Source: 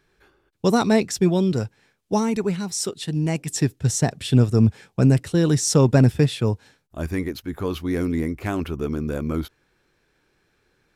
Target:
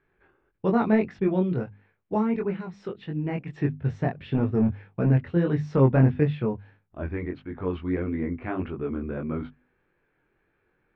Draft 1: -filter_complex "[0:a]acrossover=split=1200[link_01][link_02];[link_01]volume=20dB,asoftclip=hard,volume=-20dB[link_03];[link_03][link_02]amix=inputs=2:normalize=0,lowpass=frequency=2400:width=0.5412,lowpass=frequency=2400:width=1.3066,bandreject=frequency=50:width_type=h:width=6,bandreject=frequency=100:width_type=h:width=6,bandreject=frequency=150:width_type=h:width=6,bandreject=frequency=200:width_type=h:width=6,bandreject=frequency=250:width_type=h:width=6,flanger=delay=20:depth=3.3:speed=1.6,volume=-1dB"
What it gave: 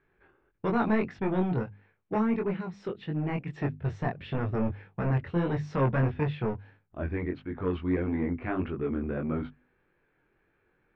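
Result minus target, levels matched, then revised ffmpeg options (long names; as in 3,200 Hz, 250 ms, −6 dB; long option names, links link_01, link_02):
gain into a clipping stage and back: distortion +17 dB
-filter_complex "[0:a]acrossover=split=1200[link_01][link_02];[link_01]volume=9.5dB,asoftclip=hard,volume=-9.5dB[link_03];[link_03][link_02]amix=inputs=2:normalize=0,lowpass=frequency=2400:width=0.5412,lowpass=frequency=2400:width=1.3066,bandreject=frequency=50:width_type=h:width=6,bandreject=frequency=100:width_type=h:width=6,bandreject=frequency=150:width_type=h:width=6,bandreject=frequency=200:width_type=h:width=6,bandreject=frequency=250:width_type=h:width=6,flanger=delay=20:depth=3.3:speed=1.6,volume=-1dB"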